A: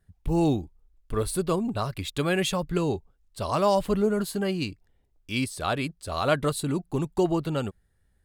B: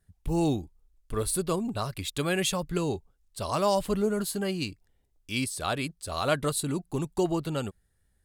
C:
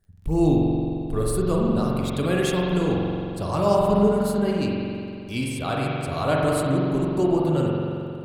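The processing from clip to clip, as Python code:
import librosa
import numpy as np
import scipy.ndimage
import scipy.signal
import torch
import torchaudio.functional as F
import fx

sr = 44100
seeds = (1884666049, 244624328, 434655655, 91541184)

y1 = fx.peak_eq(x, sr, hz=10000.0, db=7.0, octaves=2.1)
y1 = F.gain(torch.from_numpy(y1), -3.0).numpy()
y2 = fx.tilt_shelf(y1, sr, db=4.0, hz=970.0)
y2 = fx.rev_spring(y2, sr, rt60_s=2.6, pass_ms=(44,), chirp_ms=50, drr_db=-3.0)
y2 = fx.dmg_crackle(y2, sr, seeds[0], per_s=23.0, level_db=-52.0)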